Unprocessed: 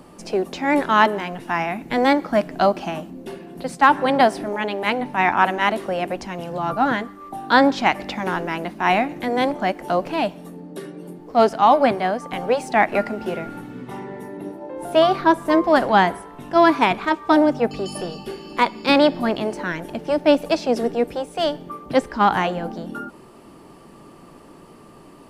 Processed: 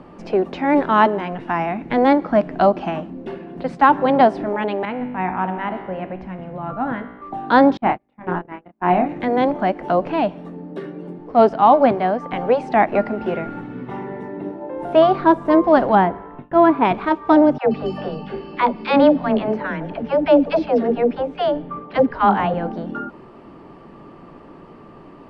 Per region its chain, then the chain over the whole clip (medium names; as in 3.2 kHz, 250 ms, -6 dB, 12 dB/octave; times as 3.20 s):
4.85–7.22 s: tone controls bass +7 dB, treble -12 dB + feedback comb 62 Hz, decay 1.2 s, mix 70%
7.77–9.06 s: gate -24 dBFS, range -38 dB + tape spacing loss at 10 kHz 29 dB + doubling 28 ms -4.5 dB
15.95–16.85 s: gate with hold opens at -26 dBFS, closes at -37 dBFS + distance through air 320 m
17.58–22.54 s: low-pass 4.7 kHz + band-stop 350 Hz, Q 9.3 + phase dispersion lows, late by 92 ms, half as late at 410 Hz
whole clip: dynamic bell 1.9 kHz, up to -6 dB, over -30 dBFS, Q 0.96; low-pass 2.4 kHz 12 dB/octave; trim +3.5 dB